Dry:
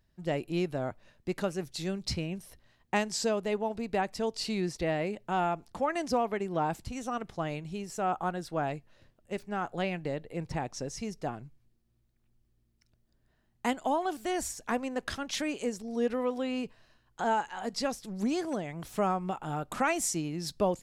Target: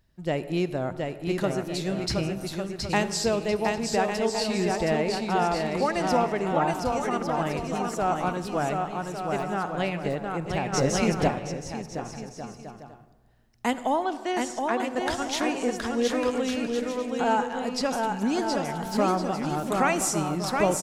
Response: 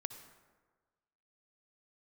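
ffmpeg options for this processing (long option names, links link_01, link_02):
-filter_complex "[0:a]asettb=1/sr,asplit=3[link_01][link_02][link_03];[link_01]atrim=end=14.044[link_04];[link_02]atrim=start=14.04:end=14.95,asetpts=PTS-STARTPTS,afade=type=in:duration=0.004:curve=qsin,afade=type=out:start_time=0.906:duration=0.004:curve=qsin,highpass=260,lowpass=5700[link_05];[link_03]atrim=start=14.946[link_06];[link_04][link_05]acrossfade=duration=0.004:curve1=hsin:curve2=qsin[link_07];[link_07][link_06]acrossfade=duration=0.004:curve1=qsin:curve2=hsin,aecho=1:1:720|1152|1411|1567|1660:0.631|0.398|0.251|0.158|0.1,asplit=3[link_08][link_09][link_10];[link_08]afade=type=out:start_time=10.72:duration=0.02[link_11];[link_09]acontrast=79,afade=type=in:start_time=10.72:duration=0.02,afade=type=out:start_time=11.27:duration=0.02[link_12];[link_10]afade=type=in:start_time=11.27:duration=0.02[link_13];[link_11][link_12][link_13]amix=inputs=3:normalize=0,asplit=2[link_14][link_15];[1:a]atrim=start_sample=2205[link_16];[link_15][link_16]afir=irnorm=-1:irlink=0,volume=4dB[link_17];[link_14][link_17]amix=inputs=2:normalize=0,volume=-3dB"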